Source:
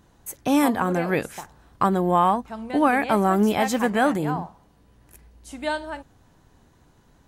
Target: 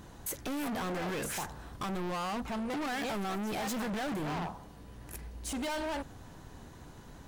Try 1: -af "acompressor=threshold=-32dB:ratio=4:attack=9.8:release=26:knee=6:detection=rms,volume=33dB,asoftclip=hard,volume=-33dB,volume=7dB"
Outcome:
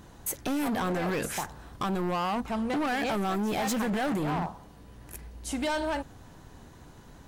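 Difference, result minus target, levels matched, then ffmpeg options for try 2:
overloaded stage: distortion -4 dB
-af "acompressor=threshold=-32dB:ratio=4:attack=9.8:release=26:knee=6:detection=rms,volume=40.5dB,asoftclip=hard,volume=-40.5dB,volume=7dB"

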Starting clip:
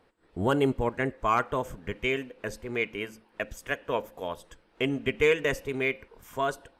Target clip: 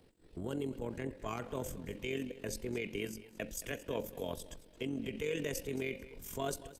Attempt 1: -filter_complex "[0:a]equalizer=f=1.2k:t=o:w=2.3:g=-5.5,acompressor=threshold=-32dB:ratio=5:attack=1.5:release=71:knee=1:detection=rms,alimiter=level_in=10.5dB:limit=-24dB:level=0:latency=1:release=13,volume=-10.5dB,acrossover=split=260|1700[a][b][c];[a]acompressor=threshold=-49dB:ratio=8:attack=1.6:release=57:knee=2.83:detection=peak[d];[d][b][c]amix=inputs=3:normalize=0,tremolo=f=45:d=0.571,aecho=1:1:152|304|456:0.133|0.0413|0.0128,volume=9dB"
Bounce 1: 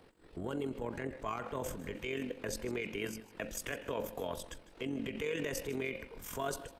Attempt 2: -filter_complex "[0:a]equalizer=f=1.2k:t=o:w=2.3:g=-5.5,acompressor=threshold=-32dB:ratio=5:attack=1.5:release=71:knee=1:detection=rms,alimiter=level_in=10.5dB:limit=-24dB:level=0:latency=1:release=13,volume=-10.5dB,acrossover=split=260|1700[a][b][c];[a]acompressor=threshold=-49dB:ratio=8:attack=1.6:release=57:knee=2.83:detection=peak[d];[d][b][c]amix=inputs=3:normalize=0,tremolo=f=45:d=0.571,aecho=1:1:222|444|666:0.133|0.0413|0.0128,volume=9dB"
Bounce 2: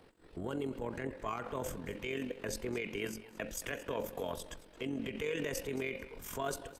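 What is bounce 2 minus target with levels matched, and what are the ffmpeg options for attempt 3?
1000 Hz band +3.0 dB
-filter_complex "[0:a]equalizer=f=1.2k:t=o:w=2.3:g=-17,acompressor=threshold=-32dB:ratio=5:attack=1.5:release=71:knee=1:detection=rms,alimiter=level_in=10.5dB:limit=-24dB:level=0:latency=1:release=13,volume=-10.5dB,acrossover=split=260|1700[a][b][c];[a]acompressor=threshold=-49dB:ratio=8:attack=1.6:release=57:knee=2.83:detection=peak[d];[d][b][c]amix=inputs=3:normalize=0,tremolo=f=45:d=0.571,aecho=1:1:222|444|666:0.133|0.0413|0.0128,volume=9dB"

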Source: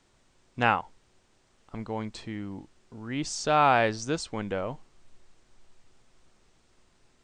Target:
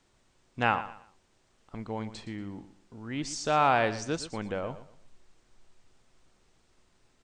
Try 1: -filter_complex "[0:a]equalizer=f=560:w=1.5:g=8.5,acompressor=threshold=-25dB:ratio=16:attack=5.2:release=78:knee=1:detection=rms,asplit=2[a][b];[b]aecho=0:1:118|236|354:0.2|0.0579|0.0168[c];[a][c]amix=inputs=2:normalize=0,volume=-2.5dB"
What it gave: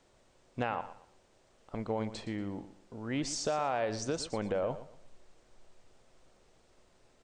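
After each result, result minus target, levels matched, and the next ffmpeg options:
compressor: peak gain reduction +13.5 dB; 500 Hz band +3.5 dB
-filter_complex "[0:a]equalizer=f=560:w=1.5:g=8.5,asplit=2[a][b];[b]aecho=0:1:118|236|354:0.2|0.0579|0.0168[c];[a][c]amix=inputs=2:normalize=0,volume=-2.5dB"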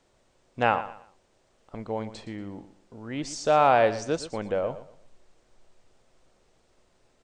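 500 Hz band +3.5 dB
-filter_complex "[0:a]asplit=2[a][b];[b]aecho=0:1:118|236|354:0.2|0.0579|0.0168[c];[a][c]amix=inputs=2:normalize=0,volume=-2.5dB"

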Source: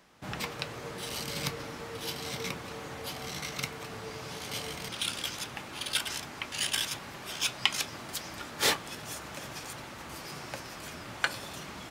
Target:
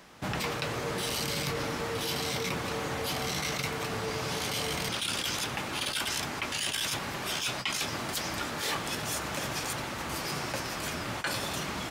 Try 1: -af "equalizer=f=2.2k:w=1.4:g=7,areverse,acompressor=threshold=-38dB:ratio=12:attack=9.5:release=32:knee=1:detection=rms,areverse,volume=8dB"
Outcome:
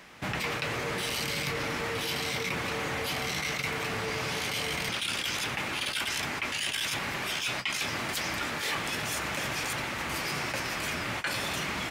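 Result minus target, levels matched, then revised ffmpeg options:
2000 Hz band +3.0 dB
-af "areverse,acompressor=threshold=-38dB:ratio=12:attack=9.5:release=32:knee=1:detection=rms,areverse,volume=8dB"

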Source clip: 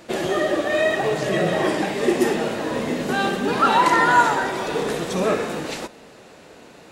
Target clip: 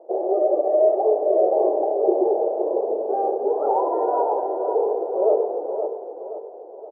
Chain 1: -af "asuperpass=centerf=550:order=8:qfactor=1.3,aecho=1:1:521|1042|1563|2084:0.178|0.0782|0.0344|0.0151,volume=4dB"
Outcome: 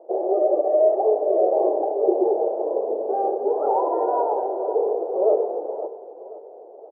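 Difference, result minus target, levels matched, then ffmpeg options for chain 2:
echo-to-direct -6.5 dB
-af "asuperpass=centerf=550:order=8:qfactor=1.3,aecho=1:1:521|1042|1563|2084|2605:0.376|0.165|0.0728|0.032|0.0141,volume=4dB"

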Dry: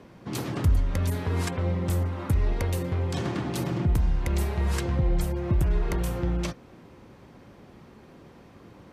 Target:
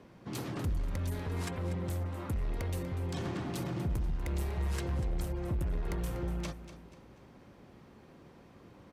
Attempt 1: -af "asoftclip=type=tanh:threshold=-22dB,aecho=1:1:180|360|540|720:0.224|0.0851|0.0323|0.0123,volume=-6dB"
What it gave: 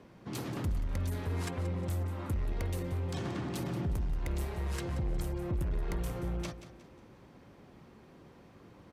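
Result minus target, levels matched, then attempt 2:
echo 62 ms early
-af "asoftclip=type=tanh:threshold=-22dB,aecho=1:1:242|484|726|968:0.224|0.0851|0.0323|0.0123,volume=-6dB"

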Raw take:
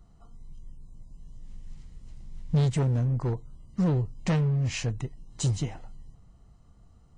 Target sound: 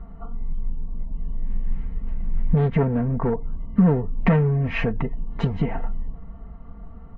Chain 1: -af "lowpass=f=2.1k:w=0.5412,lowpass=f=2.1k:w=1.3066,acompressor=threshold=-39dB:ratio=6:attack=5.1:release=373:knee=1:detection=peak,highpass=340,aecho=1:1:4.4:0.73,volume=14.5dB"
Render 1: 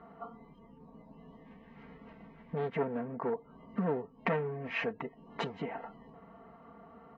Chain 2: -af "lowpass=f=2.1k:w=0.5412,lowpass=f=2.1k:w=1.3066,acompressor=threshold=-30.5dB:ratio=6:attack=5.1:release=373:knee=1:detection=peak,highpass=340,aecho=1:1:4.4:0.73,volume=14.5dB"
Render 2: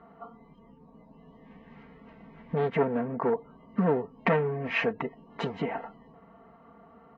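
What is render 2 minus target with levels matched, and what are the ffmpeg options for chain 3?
250 Hz band -4.0 dB
-af "lowpass=f=2.1k:w=0.5412,lowpass=f=2.1k:w=1.3066,acompressor=threshold=-30.5dB:ratio=6:attack=5.1:release=373:knee=1:detection=peak,aecho=1:1:4.4:0.73,volume=14.5dB"

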